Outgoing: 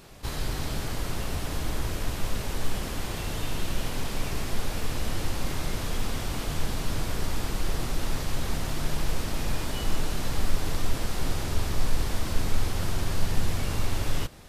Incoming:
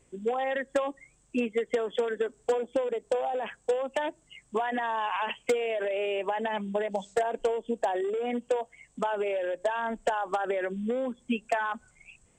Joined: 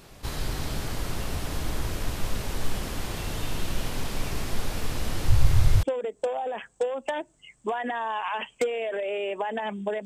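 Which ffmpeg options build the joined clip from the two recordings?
ffmpeg -i cue0.wav -i cue1.wav -filter_complex "[0:a]asettb=1/sr,asplit=3[link_01][link_02][link_03];[link_01]atrim=end=5.284[link_04];[link_02]atrim=start=5.28:end=5.83,asetpts=PTS-STARTPTS,afade=type=in:duration=0.004:curve=qsin,afade=type=out:start_time=0.546:duration=0.004:curve=qsin,lowshelf=frequency=150:width_type=q:width=3:gain=10.5[link_05];[link_03]atrim=start=5.826[link_06];[link_04][link_05]acrossfade=duration=0.004:curve1=hsin:curve2=qsin[link_07];[link_07][link_06]acrossfade=duration=0.004:curve1=qsin:curve2=hsin,apad=whole_dur=10.05,atrim=end=10.05,atrim=end=5.832[link_08];[1:a]atrim=start=2.708:end=6.93[link_09];[link_08][link_09]acrossfade=duration=0.004:curve1=hsin:curve2=hsin" out.wav

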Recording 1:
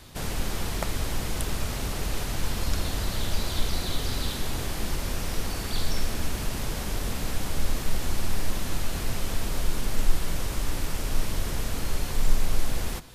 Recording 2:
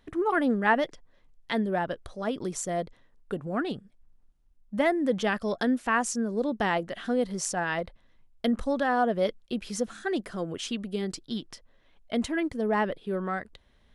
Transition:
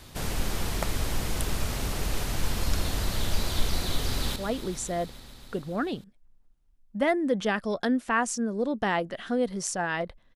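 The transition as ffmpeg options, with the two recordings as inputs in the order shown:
ffmpeg -i cue0.wav -i cue1.wav -filter_complex "[0:a]apad=whole_dur=10.35,atrim=end=10.35,atrim=end=4.362[link_01];[1:a]atrim=start=2.138:end=8.13[link_02];[link_01][link_02]acrossfade=duration=0.004:curve1=hsin:curve2=hsin,asplit=2[link_03][link_04];[link_04]afade=type=in:start_time=4.08:duration=0.01,afade=type=out:start_time=4.36:duration=0.01,aecho=0:1:140|280|420|560|700|840|980|1120|1260|1400|1540|1680:0.281838|0.239563|0.203628|0.173084|0.147121|0.125053|0.106295|0.0903509|0.0767983|0.0652785|0.0554867|0.0471637[link_05];[link_03][link_05]amix=inputs=2:normalize=0" out.wav

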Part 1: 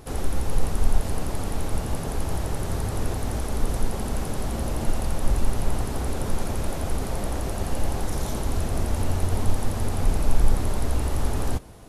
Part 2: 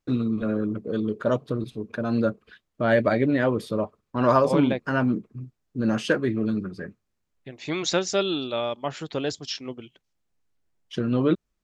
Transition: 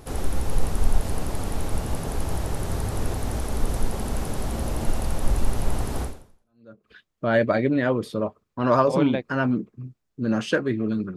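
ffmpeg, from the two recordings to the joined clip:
ffmpeg -i cue0.wav -i cue1.wav -filter_complex "[0:a]apad=whole_dur=11.16,atrim=end=11.16,atrim=end=6.89,asetpts=PTS-STARTPTS[link_01];[1:a]atrim=start=1.6:end=6.73,asetpts=PTS-STARTPTS[link_02];[link_01][link_02]acrossfade=duration=0.86:curve1=exp:curve2=exp" out.wav

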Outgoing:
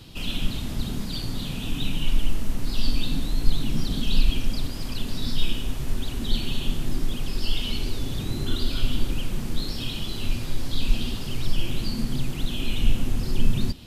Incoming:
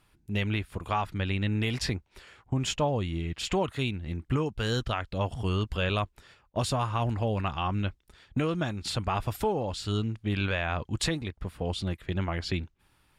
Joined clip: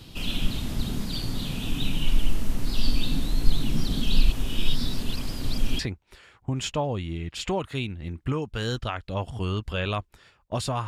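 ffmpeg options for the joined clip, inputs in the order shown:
ffmpeg -i cue0.wav -i cue1.wav -filter_complex "[0:a]apad=whole_dur=10.87,atrim=end=10.87,asplit=2[link_01][link_02];[link_01]atrim=end=4.322[link_03];[link_02]atrim=start=4.318:end=5.792,asetpts=PTS-STARTPTS,areverse[link_04];[1:a]atrim=start=1.828:end=6.91[link_05];[link_03][link_04]acrossfade=duration=0.004:curve1=hsin:curve2=hsin[link_06];[link_06][link_05]acrossfade=duration=0.004:curve1=hsin:curve2=hsin" out.wav

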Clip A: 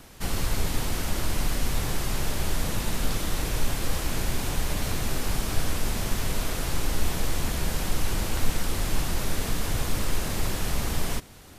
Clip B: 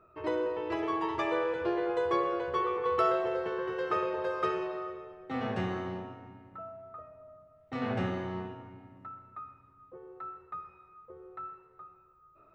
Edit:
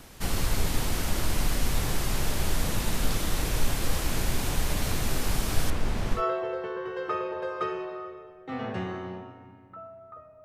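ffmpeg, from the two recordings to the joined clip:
ffmpeg -i cue0.wav -i cue1.wav -filter_complex "[0:a]asettb=1/sr,asplit=3[link_01][link_02][link_03];[link_01]atrim=end=5.704[link_04];[link_02]atrim=start=5.7:end=6.23,asetpts=PTS-STARTPTS,afade=type=in:duration=0.004:curve=qsin,afade=type=out:start_time=0.526:duration=0.004:curve=qsin,aemphasis=mode=reproduction:type=75kf[link_05];[link_03]atrim=start=6.226[link_06];[link_04][link_05]acrossfade=duration=0.004:curve1=hsin:curve2=qsin[link_07];[link_07][link_06]acrossfade=duration=0.004:curve1=qsin:curve2=hsin,apad=whole_dur=10.44,atrim=end=10.44,atrim=end=6.23,asetpts=PTS-STARTPTS[link_08];[1:a]atrim=start=2.95:end=7.26,asetpts=PTS-STARTPTS[link_09];[link_08][link_09]acrossfade=duration=0.1:curve1=tri:curve2=tri" out.wav

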